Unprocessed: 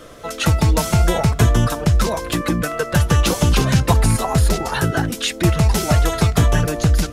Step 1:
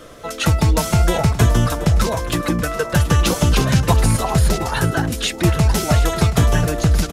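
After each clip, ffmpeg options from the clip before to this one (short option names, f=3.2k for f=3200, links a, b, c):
-af "aecho=1:1:727:0.2"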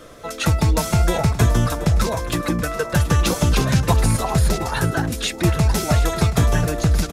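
-af "bandreject=f=3k:w=17,volume=-2dB"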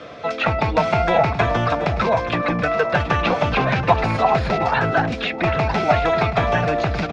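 -filter_complex "[0:a]highpass=110,equalizer=f=350:t=q:w=4:g=-4,equalizer=f=720:t=q:w=4:g=7,equalizer=f=2.4k:t=q:w=4:g=6,lowpass=f=4.6k:w=0.5412,lowpass=f=4.6k:w=1.3066,acrossover=split=490|2700[a][b][c];[a]asoftclip=type=tanh:threshold=-25.5dB[d];[c]acompressor=threshold=-44dB:ratio=6[e];[d][b][e]amix=inputs=3:normalize=0,volume=5dB"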